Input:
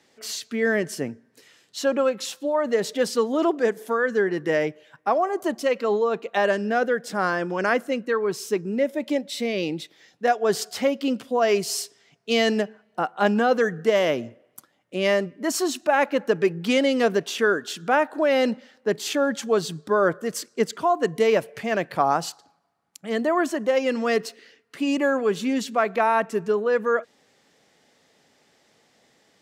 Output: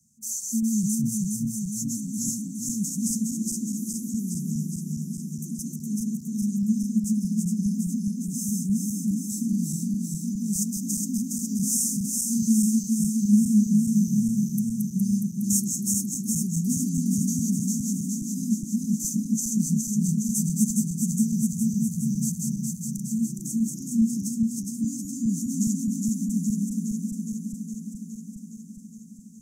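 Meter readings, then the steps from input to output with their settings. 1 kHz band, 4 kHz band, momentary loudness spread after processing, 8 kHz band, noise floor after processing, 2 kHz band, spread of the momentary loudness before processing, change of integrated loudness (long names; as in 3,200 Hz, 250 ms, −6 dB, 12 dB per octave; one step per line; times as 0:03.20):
below −40 dB, −12.0 dB, 9 LU, +9.5 dB, −40 dBFS, below −40 dB, 8 LU, −2.0 dB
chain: feedback delay that plays each chunk backwards 207 ms, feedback 83%, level −2 dB
Chebyshev band-stop filter 220–6,200 Hz, order 5
level +6 dB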